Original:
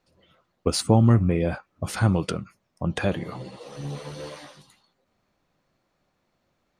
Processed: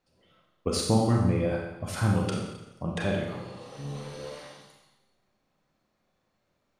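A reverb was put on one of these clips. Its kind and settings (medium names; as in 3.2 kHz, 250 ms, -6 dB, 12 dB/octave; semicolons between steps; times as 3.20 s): Schroeder reverb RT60 1 s, combs from 29 ms, DRR -0.5 dB; trim -6 dB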